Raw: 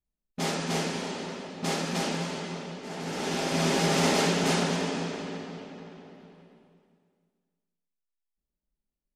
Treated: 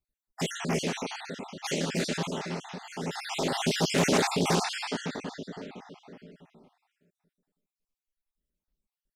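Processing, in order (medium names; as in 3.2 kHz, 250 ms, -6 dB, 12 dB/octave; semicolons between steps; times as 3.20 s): random holes in the spectrogram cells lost 52%; loudspeaker Doppler distortion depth 0.35 ms; trim +2.5 dB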